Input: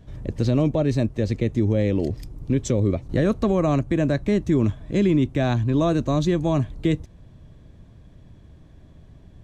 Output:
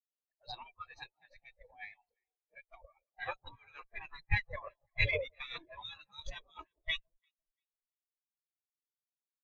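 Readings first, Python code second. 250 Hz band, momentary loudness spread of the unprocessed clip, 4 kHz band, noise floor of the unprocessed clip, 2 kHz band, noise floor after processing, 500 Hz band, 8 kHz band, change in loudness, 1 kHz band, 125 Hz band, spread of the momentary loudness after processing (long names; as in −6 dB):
below −40 dB, 5 LU, −4.5 dB, −49 dBFS, −1.5 dB, below −85 dBFS, −24.0 dB, below −25 dB, −17.5 dB, −15.5 dB, −24.5 dB, 23 LU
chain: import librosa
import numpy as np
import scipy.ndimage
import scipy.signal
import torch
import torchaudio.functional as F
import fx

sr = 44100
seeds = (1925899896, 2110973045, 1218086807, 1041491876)

y = fx.spec_gate(x, sr, threshold_db=-25, keep='weak')
y = fx.peak_eq(y, sr, hz=230.0, db=-3.0, octaves=0.74)
y = fx.dispersion(y, sr, late='highs', ms=48.0, hz=1400.0)
y = fx.cheby_harmonics(y, sr, harmonics=(2, 3, 4, 7), levels_db=(-7, -17, -9, -34), full_scale_db=-24.5)
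y = fx.echo_alternate(y, sr, ms=171, hz=960.0, feedback_pct=79, wet_db=-9.5)
y = fx.spectral_expand(y, sr, expansion=4.0)
y = y * 10.0 ** (10.5 / 20.0)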